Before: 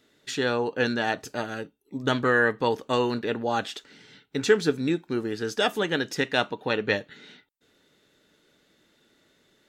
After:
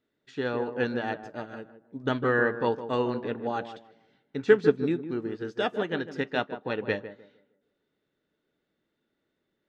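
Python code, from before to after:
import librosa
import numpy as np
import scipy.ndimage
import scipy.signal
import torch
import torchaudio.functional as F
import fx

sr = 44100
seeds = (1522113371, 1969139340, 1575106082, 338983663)

p1 = fx.spacing_loss(x, sr, db_at_10k=22)
p2 = p1 + fx.echo_tape(p1, sr, ms=155, feedback_pct=46, wet_db=-6.0, lp_hz=1000.0, drive_db=9.0, wow_cents=32, dry=0)
p3 = fx.upward_expand(p2, sr, threshold_db=-46.0, expansion=1.5)
y = p3 * 10.0 ** (2.5 / 20.0)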